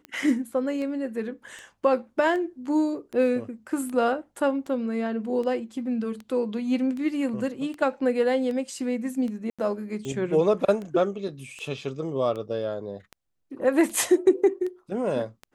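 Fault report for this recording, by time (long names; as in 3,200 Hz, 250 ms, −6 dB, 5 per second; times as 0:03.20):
scratch tick 78 rpm −24 dBFS
0:09.50–0:09.59: drop-out 86 ms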